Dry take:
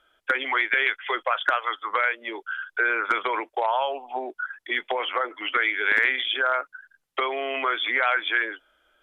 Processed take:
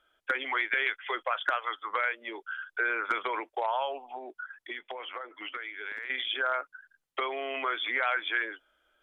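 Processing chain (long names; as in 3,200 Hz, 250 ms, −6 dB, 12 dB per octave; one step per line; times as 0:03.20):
0:04.10–0:06.10: downward compressor 4 to 1, threshold −31 dBFS, peak gain reduction 13 dB
level −6 dB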